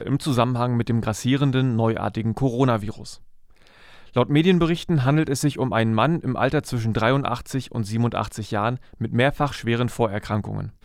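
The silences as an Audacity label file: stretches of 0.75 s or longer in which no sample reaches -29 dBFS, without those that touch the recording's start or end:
3.130000	4.160000	silence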